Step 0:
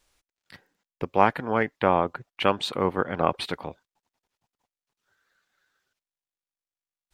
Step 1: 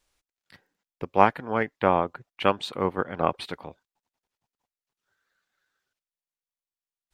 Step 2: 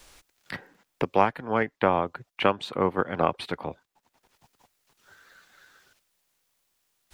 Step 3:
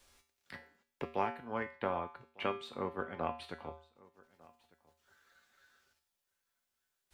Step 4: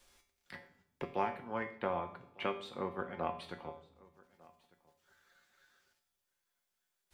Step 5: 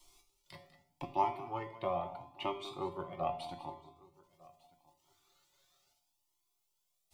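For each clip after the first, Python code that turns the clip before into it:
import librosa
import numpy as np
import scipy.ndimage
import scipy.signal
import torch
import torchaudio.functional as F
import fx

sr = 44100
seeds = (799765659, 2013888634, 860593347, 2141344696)

y1 = fx.upward_expand(x, sr, threshold_db=-29.0, expansion=1.5)
y1 = y1 * librosa.db_to_amplitude(2.0)
y2 = fx.band_squash(y1, sr, depth_pct=70)
y3 = fx.comb_fb(y2, sr, f0_hz=79.0, decay_s=0.43, harmonics='odd', damping=0.0, mix_pct=80)
y3 = y3 + 10.0 ** (-24.0 / 20.0) * np.pad(y3, (int(1200 * sr / 1000.0), 0))[:len(y3)]
y3 = y3 * librosa.db_to_amplitude(-2.5)
y4 = fx.room_shoebox(y3, sr, seeds[0], volume_m3=3000.0, walls='furnished', distance_m=0.92)
y4 = y4 * librosa.db_to_amplitude(-1.0)
y5 = fx.fixed_phaser(y4, sr, hz=320.0, stages=8)
y5 = y5 + 10.0 ** (-14.5 / 20.0) * np.pad(y5, (int(197 * sr / 1000.0), 0))[:len(y5)]
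y5 = fx.comb_cascade(y5, sr, direction='rising', hz=0.79)
y5 = y5 * librosa.db_to_amplitude(8.0)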